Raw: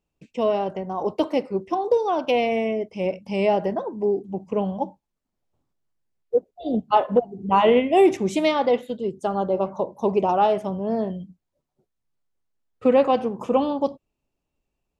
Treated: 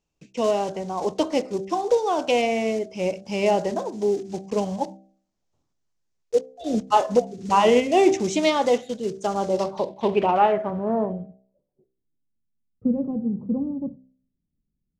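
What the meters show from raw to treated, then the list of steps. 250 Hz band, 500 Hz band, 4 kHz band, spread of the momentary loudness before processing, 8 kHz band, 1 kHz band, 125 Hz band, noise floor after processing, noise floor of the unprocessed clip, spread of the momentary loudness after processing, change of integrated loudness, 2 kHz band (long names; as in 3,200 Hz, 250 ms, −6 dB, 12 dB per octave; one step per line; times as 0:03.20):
−0.5 dB, −1.0 dB, +2.5 dB, 10 LU, can't be measured, −0.5 dB, −1.0 dB, −79 dBFS, −81 dBFS, 10 LU, −0.5 dB, +1.0 dB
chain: one scale factor per block 5 bits
hum removal 64.58 Hz, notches 12
low-pass filter sweep 6,400 Hz → 200 Hz, 0:09.49–0:12.46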